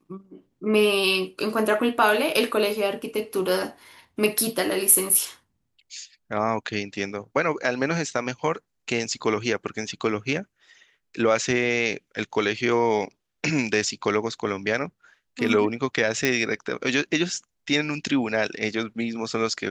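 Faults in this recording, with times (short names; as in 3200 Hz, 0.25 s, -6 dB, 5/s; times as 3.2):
16.25 pop -7 dBFS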